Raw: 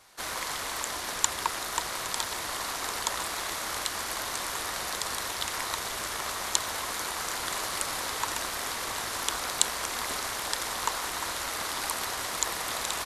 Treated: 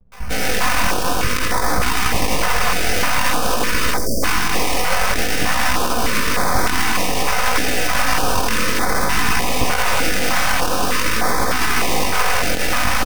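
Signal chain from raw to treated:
stylus tracing distortion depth 0.23 ms
decimation without filtering 12×
comb filter 4 ms, depth 55%
multiband delay without the direct sound lows, highs 120 ms, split 210 Hz
half-wave rectification
chorus effect 0.52 Hz, delay 16 ms, depth 6.8 ms
time-frequency box erased 0:03.98–0:04.23, 680–4,500 Hz
single-tap delay 84 ms −12.5 dB
boost into a limiter +25 dB
notch on a step sequencer 3.3 Hz 290–2,800 Hz
level −2 dB

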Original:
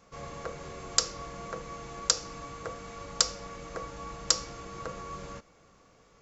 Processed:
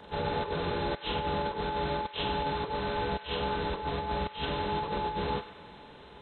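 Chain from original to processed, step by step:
partials spread apart or drawn together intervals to 82%
compressor whose output falls as the input rises −43 dBFS, ratio −0.5
feedback echo with a band-pass in the loop 99 ms, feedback 72%, band-pass 2,000 Hz, level −12 dB
level +9 dB

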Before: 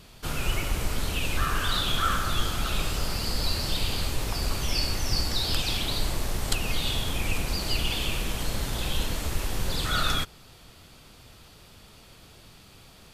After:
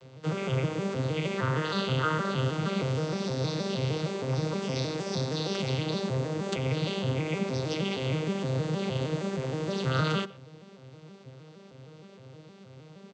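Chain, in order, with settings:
vocoder with an arpeggio as carrier minor triad, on C3, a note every 156 ms
parametric band 490 Hz +10 dB 0.45 octaves
far-end echo of a speakerphone 120 ms, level −20 dB
level +1.5 dB

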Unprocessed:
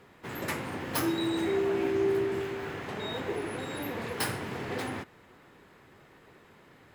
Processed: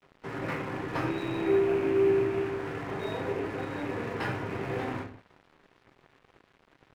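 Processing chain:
loose part that buzzes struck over −37 dBFS, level −30 dBFS
low-pass filter 2,200 Hz 12 dB per octave
in parallel at −1 dB: downward compressor, threshold −42 dBFS, peak gain reduction 17 dB
on the sum: rectangular room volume 48 cubic metres, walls mixed, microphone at 0.55 metres
dead-zone distortion −45.5 dBFS
level −2.5 dB

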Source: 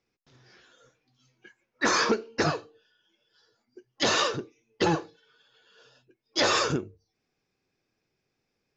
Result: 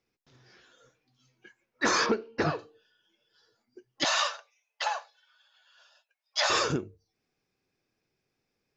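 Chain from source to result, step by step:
0:02.06–0:02.59: high-frequency loss of the air 180 metres
0:04.04–0:06.50: Butterworth high-pass 590 Hz 72 dB per octave
level −1.5 dB

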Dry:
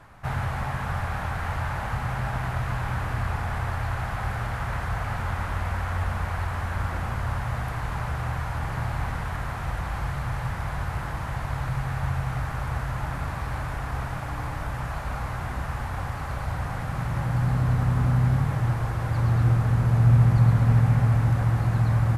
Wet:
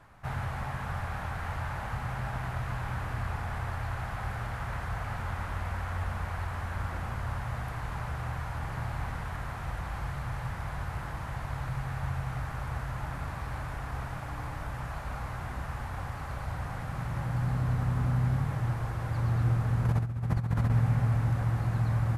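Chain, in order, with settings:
0:19.85–0:20.70: compressor whose output falls as the input rises −21 dBFS, ratio −0.5
level −6 dB

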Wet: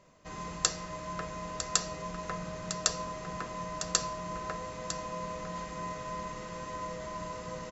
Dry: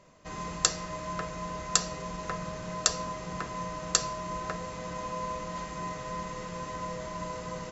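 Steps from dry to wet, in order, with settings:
single-tap delay 953 ms −10 dB
level −3 dB

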